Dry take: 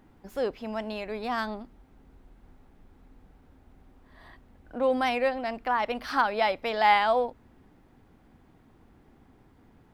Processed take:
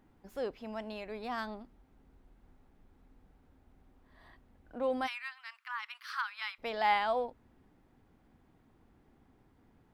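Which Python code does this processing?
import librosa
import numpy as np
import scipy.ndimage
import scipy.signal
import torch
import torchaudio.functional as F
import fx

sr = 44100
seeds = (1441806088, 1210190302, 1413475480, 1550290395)

y = fx.steep_highpass(x, sr, hz=1100.0, slope=48, at=(5.06, 6.58), fade=0.02)
y = F.gain(torch.from_numpy(y), -7.5).numpy()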